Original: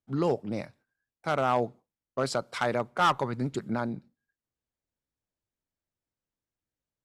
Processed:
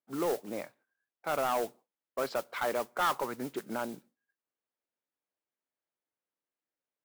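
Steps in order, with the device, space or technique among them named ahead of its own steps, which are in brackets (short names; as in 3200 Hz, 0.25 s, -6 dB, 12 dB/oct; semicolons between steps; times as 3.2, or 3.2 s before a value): carbon microphone (BPF 350–2700 Hz; soft clip -23.5 dBFS, distortion -11 dB; modulation noise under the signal 15 dB)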